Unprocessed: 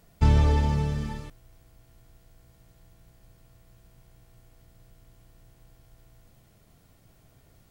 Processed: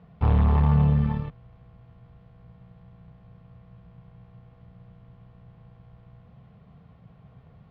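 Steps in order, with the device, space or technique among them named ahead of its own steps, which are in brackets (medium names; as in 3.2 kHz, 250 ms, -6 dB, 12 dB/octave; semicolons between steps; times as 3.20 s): guitar amplifier (valve stage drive 27 dB, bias 0.6; tone controls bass +13 dB, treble -4 dB; cabinet simulation 85–3500 Hz, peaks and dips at 98 Hz -5 dB, 180 Hz +5 dB, 320 Hz -10 dB, 470 Hz +7 dB, 760 Hz +6 dB, 1.1 kHz +9 dB); trim +2.5 dB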